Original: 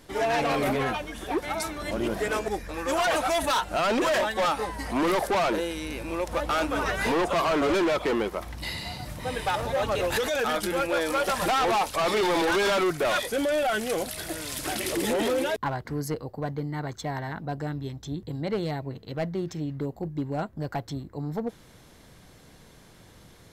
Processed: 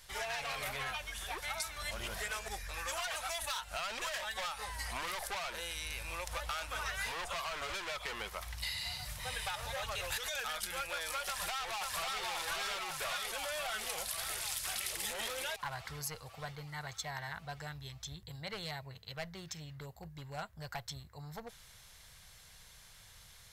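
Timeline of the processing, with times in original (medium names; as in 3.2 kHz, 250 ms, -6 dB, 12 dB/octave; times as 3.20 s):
11.27–12.23 s: echo throw 540 ms, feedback 65%, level -1 dB
whole clip: amplifier tone stack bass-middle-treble 10-0-10; compression, threshold -37 dBFS; trim +2 dB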